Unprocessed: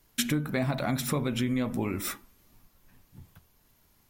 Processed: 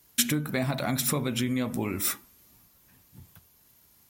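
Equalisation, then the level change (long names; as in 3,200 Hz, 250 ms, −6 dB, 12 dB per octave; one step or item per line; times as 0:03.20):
high-pass filter 56 Hz
high-shelf EQ 4,200 Hz +8.5 dB
0.0 dB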